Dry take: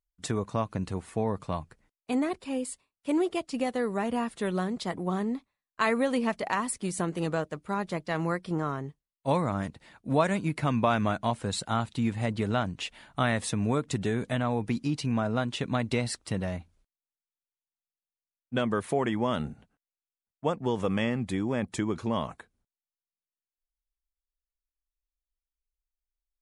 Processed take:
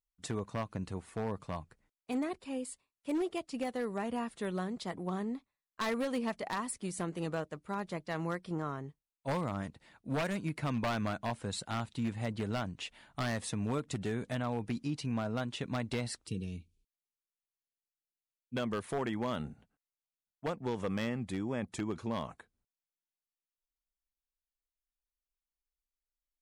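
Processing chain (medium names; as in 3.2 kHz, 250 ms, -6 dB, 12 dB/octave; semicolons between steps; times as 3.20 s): time-frequency box 16.27–18.56 s, 490–2200 Hz -24 dB; wavefolder -20 dBFS; trim -6.5 dB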